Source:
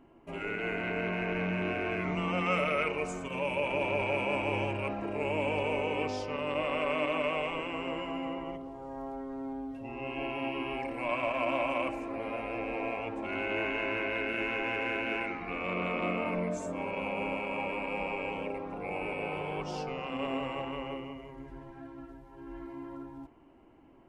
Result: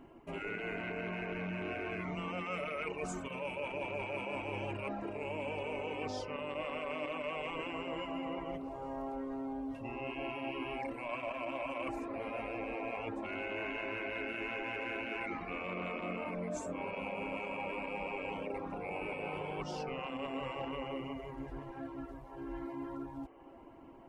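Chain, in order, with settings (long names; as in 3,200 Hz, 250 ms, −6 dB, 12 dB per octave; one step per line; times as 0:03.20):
reverb reduction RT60 0.58 s
reversed playback
downward compressor, threshold −40 dBFS, peak gain reduction 13.5 dB
reversed playback
feedback echo with a band-pass in the loop 856 ms, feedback 76%, band-pass 760 Hz, level −16 dB
level +3.5 dB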